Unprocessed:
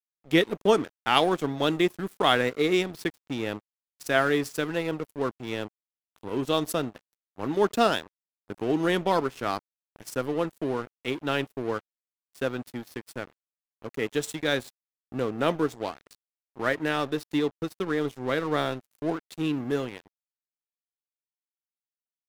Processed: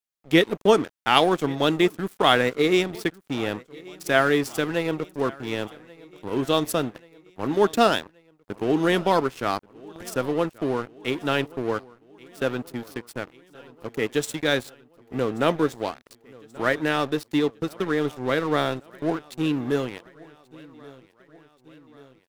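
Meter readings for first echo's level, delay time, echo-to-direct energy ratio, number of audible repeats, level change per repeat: -22.5 dB, 1.132 s, -20.5 dB, 3, -4.5 dB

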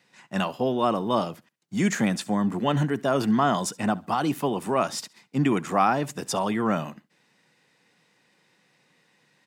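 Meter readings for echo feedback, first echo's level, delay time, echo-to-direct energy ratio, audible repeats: 27%, -22.5 dB, 68 ms, -22.0 dB, 2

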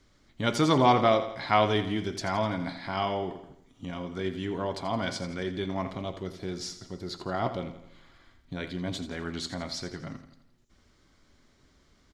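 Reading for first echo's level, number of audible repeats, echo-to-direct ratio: -12.0 dB, 4, -10.5 dB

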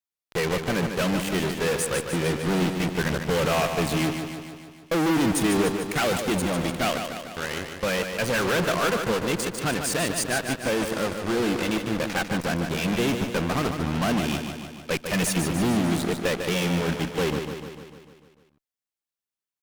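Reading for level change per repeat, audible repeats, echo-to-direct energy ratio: -4.5 dB, 7, -5.0 dB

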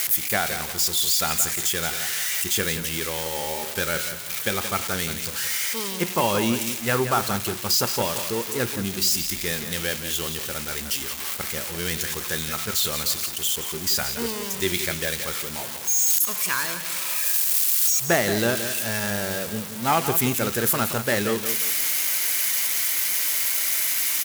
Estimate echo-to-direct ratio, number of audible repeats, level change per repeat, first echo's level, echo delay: -9.5 dB, 3, -9.5 dB, -10.0 dB, 0.174 s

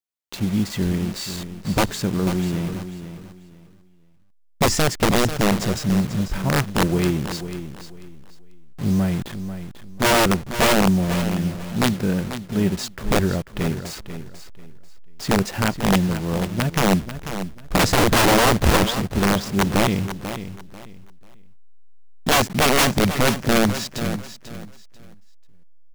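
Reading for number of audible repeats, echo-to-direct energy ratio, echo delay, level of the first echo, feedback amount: 2, -10.5 dB, 0.491 s, -11.0 dB, 25%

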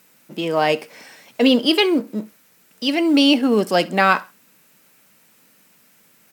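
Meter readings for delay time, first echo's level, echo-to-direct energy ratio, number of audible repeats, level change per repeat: 66 ms, -23.0 dB, -22.5 dB, 2, -10.0 dB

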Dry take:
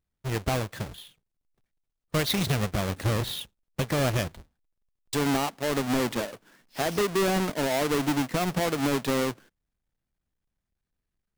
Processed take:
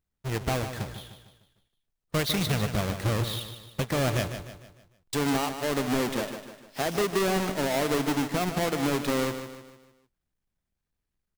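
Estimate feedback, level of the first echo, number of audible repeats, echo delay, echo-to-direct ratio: 44%, -9.5 dB, 4, 0.151 s, -8.5 dB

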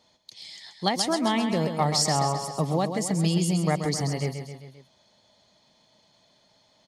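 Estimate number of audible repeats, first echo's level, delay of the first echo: 4, -8.0 dB, 0.132 s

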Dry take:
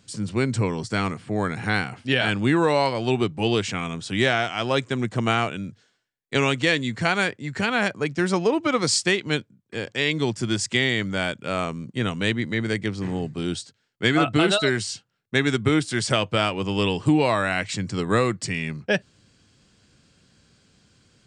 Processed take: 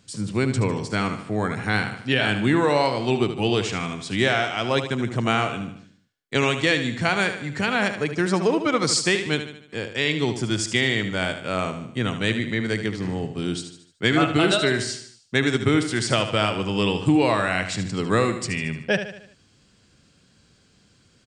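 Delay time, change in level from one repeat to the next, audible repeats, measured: 75 ms, -6.5 dB, 5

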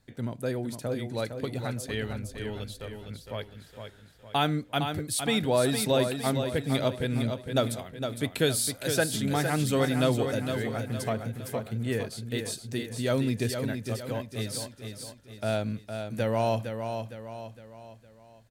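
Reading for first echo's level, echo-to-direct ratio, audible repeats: -7.0 dB, -6.0 dB, 4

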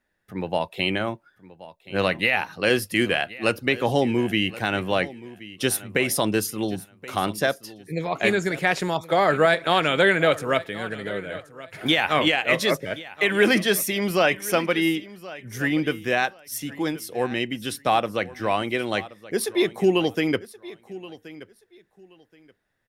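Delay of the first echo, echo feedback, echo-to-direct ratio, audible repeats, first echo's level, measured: 1.076 s, 21%, -18.0 dB, 2, -18.0 dB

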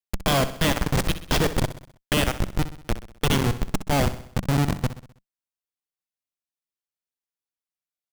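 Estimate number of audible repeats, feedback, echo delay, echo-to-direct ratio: 4, 51%, 64 ms, -11.5 dB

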